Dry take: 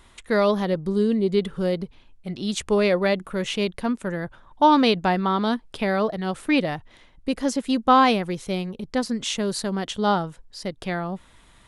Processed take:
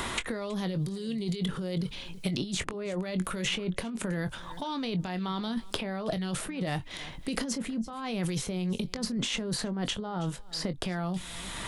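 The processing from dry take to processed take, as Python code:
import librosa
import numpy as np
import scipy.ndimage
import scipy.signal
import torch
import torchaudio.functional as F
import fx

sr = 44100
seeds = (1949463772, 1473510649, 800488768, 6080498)

p1 = fx.dynamic_eq(x, sr, hz=170.0, q=0.7, threshold_db=-34.0, ratio=4.0, max_db=5)
p2 = fx.over_compress(p1, sr, threshold_db=-30.0, ratio=-1.0)
p3 = fx.doubler(p2, sr, ms=22.0, db=-11.0)
p4 = p3 + fx.echo_single(p3, sr, ms=321, db=-24.0, dry=0)
p5 = fx.band_squash(p4, sr, depth_pct=100)
y = p5 * librosa.db_to_amplitude(-4.5)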